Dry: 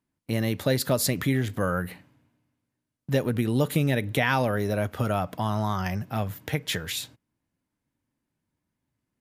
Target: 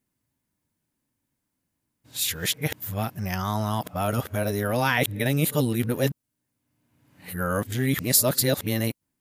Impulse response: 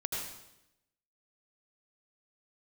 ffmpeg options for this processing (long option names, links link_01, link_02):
-af "areverse,crystalizer=i=1.5:c=0"